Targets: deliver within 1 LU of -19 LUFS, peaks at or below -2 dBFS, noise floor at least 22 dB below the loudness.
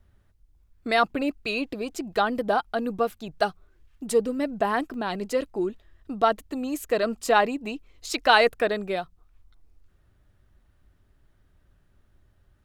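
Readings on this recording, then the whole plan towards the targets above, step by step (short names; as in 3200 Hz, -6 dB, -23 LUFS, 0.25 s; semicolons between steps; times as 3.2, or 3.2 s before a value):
dropouts 1; longest dropout 2.0 ms; loudness -26.0 LUFS; peak -4.5 dBFS; loudness target -19.0 LUFS
-> interpolate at 4.94, 2 ms; gain +7 dB; limiter -2 dBFS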